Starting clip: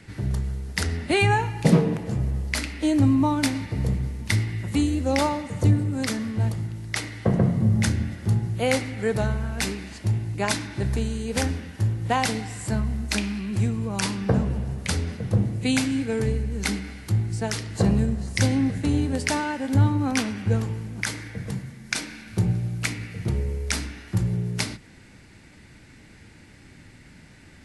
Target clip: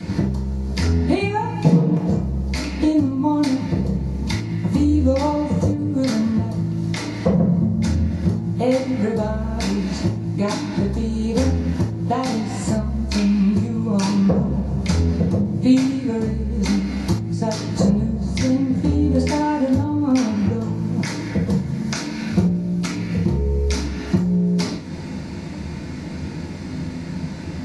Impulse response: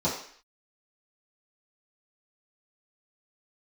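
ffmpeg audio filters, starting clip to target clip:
-filter_complex "[0:a]acompressor=threshold=-37dB:ratio=6[a];[1:a]atrim=start_sample=2205,atrim=end_sample=4410[b];[a][b]afir=irnorm=-1:irlink=0,volume=5dB"

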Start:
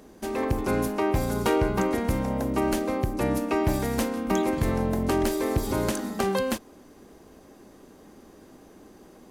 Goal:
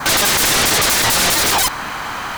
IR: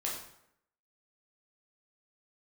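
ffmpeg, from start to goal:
-af "aeval=exprs='0.211*sin(PI/2*8.91*val(0)/0.211)':c=same,asetrate=172431,aresample=44100,adynamicequalizer=threshold=0.0251:dfrequency=2900:dqfactor=3.9:tfrequency=2900:tqfactor=3.9:attack=5:release=100:ratio=0.375:range=1.5:mode=cutabove:tftype=bell,volume=2.5dB"

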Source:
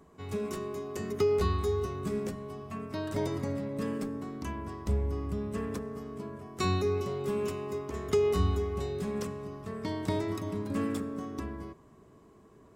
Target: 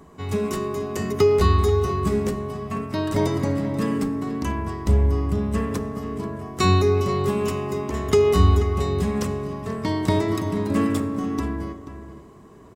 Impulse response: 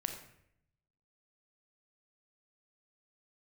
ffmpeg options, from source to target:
-filter_complex "[0:a]asplit=2[a][b];[b]adelay=484,volume=-11dB,highshelf=f=4k:g=-10.9[c];[a][c]amix=inputs=2:normalize=0,asplit=2[d][e];[1:a]atrim=start_sample=2205[f];[e][f]afir=irnorm=-1:irlink=0,volume=-9dB[g];[d][g]amix=inputs=2:normalize=0,volume=7.5dB"

